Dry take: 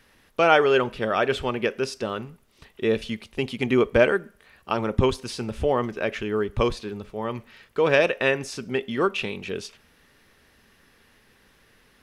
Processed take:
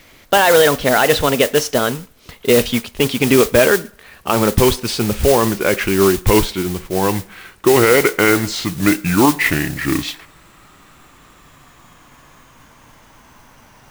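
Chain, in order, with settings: gliding tape speed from 120% -> 53%; modulation noise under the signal 11 dB; loudness maximiser +13 dB; trim -1 dB

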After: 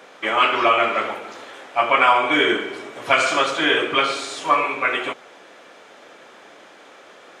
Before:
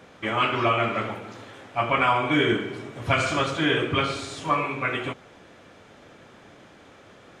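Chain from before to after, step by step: high-pass 420 Hz 12 dB/octave; trim +6.5 dB

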